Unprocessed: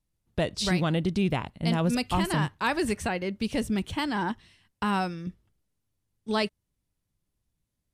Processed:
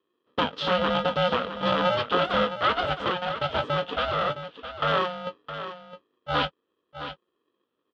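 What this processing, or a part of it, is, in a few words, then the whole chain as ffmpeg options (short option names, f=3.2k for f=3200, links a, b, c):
ring modulator pedal into a guitar cabinet: -filter_complex "[0:a]aeval=exprs='val(0)*sgn(sin(2*PI*360*n/s))':c=same,highpass=88,equalizer=f=120:t=q:w=4:g=-8,equalizer=f=180:t=q:w=4:g=-3,equalizer=f=490:t=q:w=4:g=4,equalizer=f=1.3k:t=q:w=4:g=8,equalizer=f=2.2k:t=q:w=4:g=-7,equalizer=f=3.2k:t=q:w=4:g=9,lowpass=f=3.6k:w=0.5412,lowpass=f=3.6k:w=1.3066,asplit=2[a][b];[b]adelay=20,volume=-11.5dB[c];[a][c]amix=inputs=2:normalize=0,aecho=1:1:663:0.282"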